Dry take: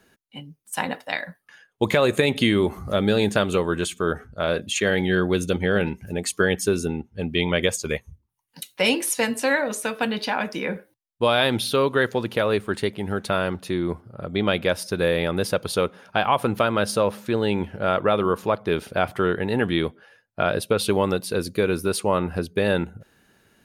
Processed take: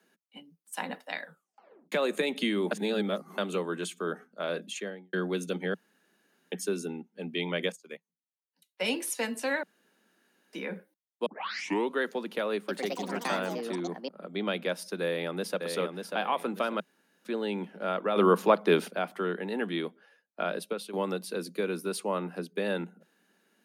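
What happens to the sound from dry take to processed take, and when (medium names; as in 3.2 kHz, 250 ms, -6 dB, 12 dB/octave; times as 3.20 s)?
1.22 s: tape stop 0.70 s
2.71–3.38 s: reverse
4.61–5.13 s: studio fade out
5.74–6.52 s: room tone
7.72–8.88 s: upward expansion 2.5:1, over -32 dBFS
9.63–10.53 s: room tone
11.26 s: tape start 0.65 s
12.54–14.41 s: ever faster or slower copies 143 ms, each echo +5 st, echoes 3
15.01–15.60 s: echo throw 590 ms, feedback 30%, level -5.5 dB
16.80–17.25 s: room tone
18.16–18.88 s: gain +9.5 dB
20.43–20.93 s: fade out equal-power, to -14.5 dB
whole clip: steep high-pass 170 Hz 96 dB/octave; trim -9 dB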